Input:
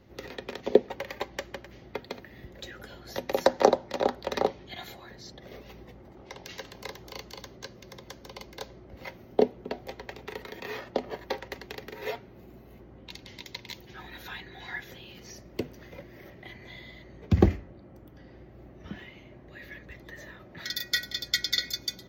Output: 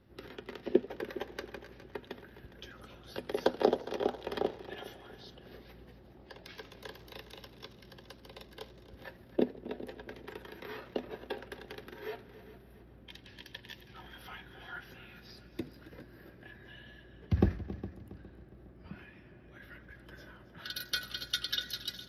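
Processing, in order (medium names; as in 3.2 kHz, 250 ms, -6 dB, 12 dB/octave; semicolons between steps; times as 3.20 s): formant shift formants -3 st; multi-head delay 137 ms, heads second and third, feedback 42%, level -16 dB; modulated delay 84 ms, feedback 72%, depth 207 cents, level -20.5 dB; trim -6.5 dB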